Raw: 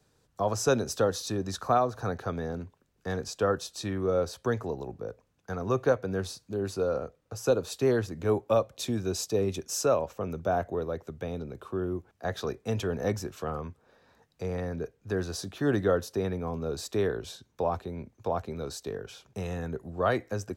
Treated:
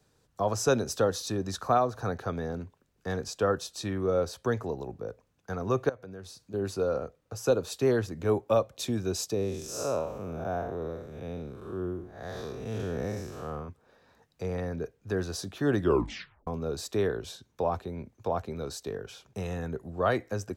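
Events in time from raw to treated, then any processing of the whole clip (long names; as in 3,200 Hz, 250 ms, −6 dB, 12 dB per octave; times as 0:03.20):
0:05.89–0:06.54: downward compressor 2.5 to 1, threshold −46 dBFS
0:09.34–0:13.69: spectrum smeared in time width 195 ms
0:15.79: tape stop 0.68 s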